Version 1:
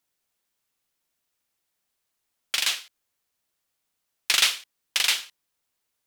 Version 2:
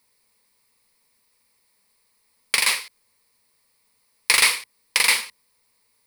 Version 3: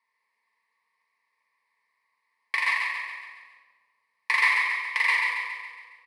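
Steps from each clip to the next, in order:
ripple EQ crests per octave 0.91, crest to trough 11 dB; in parallel at +3 dB: limiter -15.5 dBFS, peak gain reduction 11 dB; on the sum: dynamic EQ 4400 Hz, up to -8 dB, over -30 dBFS, Q 0.89; gain +3 dB
double band-pass 1400 Hz, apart 0.82 oct; on a send: feedback echo 0.138 s, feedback 51%, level -5 dB; on the sum: shoebox room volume 1400 m³, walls mixed, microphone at 1.6 m; gain +1.5 dB

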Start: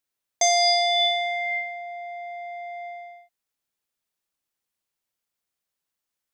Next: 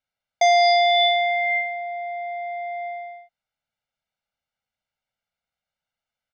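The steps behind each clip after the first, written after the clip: LPF 3400 Hz 12 dB/oct; comb 1.4 ms, depth 92%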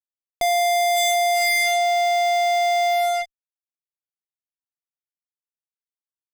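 bell 1000 Hz -8.5 dB 0.25 oct; fuzz box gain 46 dB, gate -48 dBFS; gain -5.5 dB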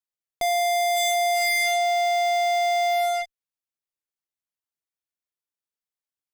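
limiter -20.5 dBFS, peak gain reduction 4 dB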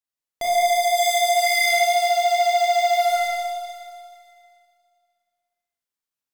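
vibrato 6.8 Hz 34 cents; Schroeder reverb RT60 2.2 s, combs from 27 ms, DRR -4 dB; gain -2 dB

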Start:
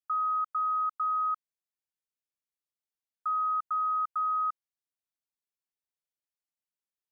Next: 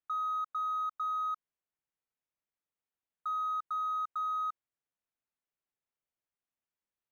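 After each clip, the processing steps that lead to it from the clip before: Wiener smoothing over 9 samples; limiter -33.5 dBFS, peak gain reduction 7 dB; gain +3 dB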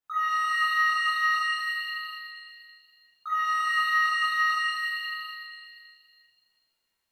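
shimmer reverb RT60 1.8 s, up +7 st, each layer -2 dB, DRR -10.5 dB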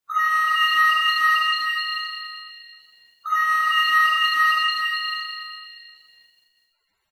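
bin magnitudes rounded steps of 30 dB; speakerphone echo 0.12 s, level -17 dB; gain +7 dB

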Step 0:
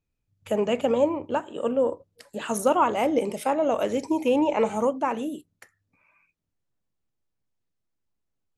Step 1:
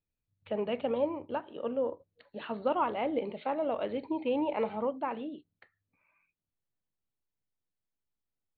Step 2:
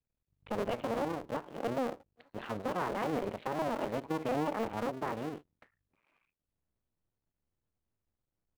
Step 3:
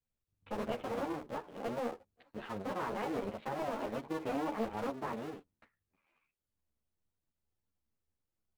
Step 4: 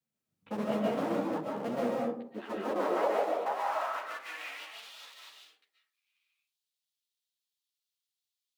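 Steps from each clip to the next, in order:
Chebyshev low-pass 4400 Hz, order 10; gain -8 dB
cycle switcher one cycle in 2, muted; high shelf 2700 Hz -10.5 dB; limiter -27 dBFS, peak gain reduction 9 dB; gain +4 dB
ensemble effect
high-pass sweep 180 Hz -> 3600 Hz, 2.02–4.84; reverb RT60 0.60 s, pre-delay 0.1 s, DRR -2.5 dB

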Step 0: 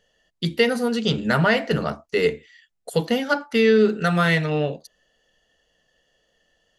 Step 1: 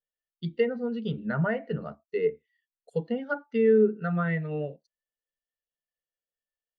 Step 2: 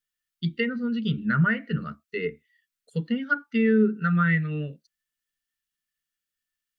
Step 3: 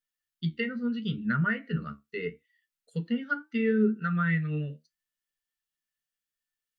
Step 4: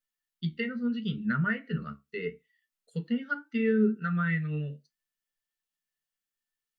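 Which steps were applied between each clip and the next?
LPF 8600 Hz; treble ducked by the level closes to 2200 Hz, closed at -15.5 dBFS; spectral expander 1.5:1; gain -4.5 dB
EQ curve 260 Hz 0 dB, 770 Hz -21 dB, 1300 Hz +3 dB; gain +5.5 dB
flange 0.75 Hz, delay 8.3 ms, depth 6 ms, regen +58%
reverb RT60 0.20 s, pre-delay 4 ms, DRR 13 dB; gain -1.5 dB

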